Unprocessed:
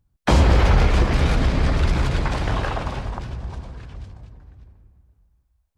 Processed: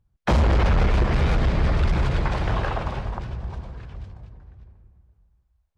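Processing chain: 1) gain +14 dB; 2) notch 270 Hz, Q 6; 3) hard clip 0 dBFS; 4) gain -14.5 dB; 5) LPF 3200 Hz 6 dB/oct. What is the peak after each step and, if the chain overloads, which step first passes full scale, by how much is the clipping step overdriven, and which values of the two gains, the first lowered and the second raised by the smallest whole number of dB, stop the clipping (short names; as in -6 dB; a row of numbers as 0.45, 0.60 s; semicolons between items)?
+8.5, +8.5, 0.0, -14.5, -14.5 dBFS; step 1, 8.5 dB; step 1 +5 dB, step 4 -5.5 dB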